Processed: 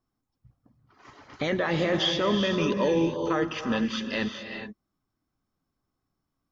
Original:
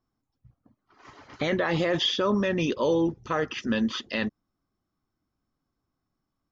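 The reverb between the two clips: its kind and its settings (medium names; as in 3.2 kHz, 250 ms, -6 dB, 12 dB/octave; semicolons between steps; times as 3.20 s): gated-style reverb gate 450 ms rising, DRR 5 dB; trim -1 dB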